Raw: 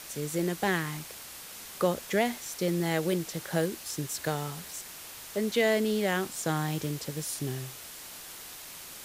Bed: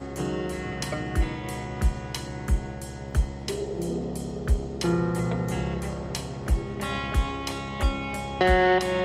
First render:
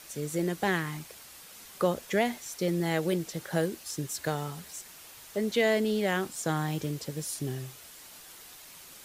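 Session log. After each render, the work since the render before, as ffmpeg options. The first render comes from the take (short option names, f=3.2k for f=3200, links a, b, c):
-af "afftdn=nr=6:nf=-45"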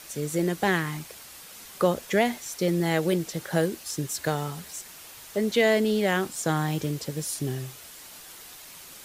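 -af "volume=4dB"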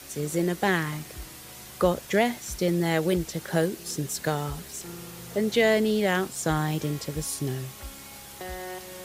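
-filter_complex "[1:a]volume=-17.5dB[a];[0:a][a]amix=inputs=2:normalize=0"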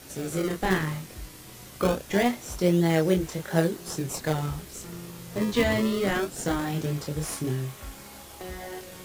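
-filter_complex "[0:a]flanger=delay=22.5:depth=4.3:speed=0.77,asplit=2[a][b];[b]acrusher=samples=34:mix=1:aa=0.000001:lfo=1:lforange=54.4:lforate=0.23,volume=-5dB[c];[a][c]amix=inputs=2:normalize=0"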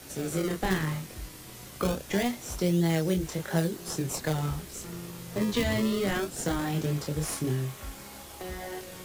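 -filter_complex "[0:a]acrossover=split=200|3000[a][b][c];[b]acompressor=threshold=-27dB:ratio=6[d];[a][d][c]amix=inputs=3:normalize=0"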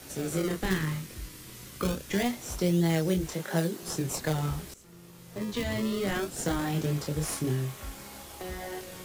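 -filter_complex "[0:a]asettb=1/sr,asplit=3[a][b][c];[a]atrim=end=0.604[d];[b]atrim=start=0.6:end=2.2,asetpts=PTS-STARTPTS,afade=t=in:d=0.004:c=qsin,afade=t=out:st=1.596:d=0.004:c=qsin,equalizer=f=720:w=1.7:g=-8[e];[c]atrim=start=2.196[f];[d][e]acrossfade=d=0.004:c1=hsin:c2=qsin[g];[g][f]acrossfade=d=0.004:c1=qsin:c2=hsin,asettb=1/sr,asplit=3[h][i][j];[h]atrim=end=3.344[k];[i]atrim=start=3.34:end=3.83,asetpts=PTS-STARTPTS,afade=t=in:d=0.004:c=qsin,afade=t=out:st=0.486:d=0.004:c=qsin,highpass=f=150:w=0.5412,highpass=f=150:w=1.3066[l];[j]atrim=start=3.826[m];[k][l]acrossfade=d=0.004:c1=hsin:c2=qsin[n];[n][m]acrossfade=d=0.004:c1=qsin:c2=hsin,asplit=2[o][p];[o]atrim=end=4.74,asetpts=PTS-STARTPTS,afade=t=out:st=4.736:d=0.004:c=hsin:silence=0.141254[q];[p]atrim=start=4.74,asetpts=PTS-STARTPTS,afade=t=in:d=1.66:silence=0.141254[r];[q][r]concat=n=2:v=0:a=1"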